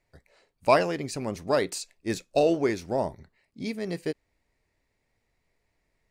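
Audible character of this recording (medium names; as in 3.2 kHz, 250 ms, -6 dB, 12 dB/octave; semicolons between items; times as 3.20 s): noise floor -77 dBFS; spectral tilt -5.0 dB/octave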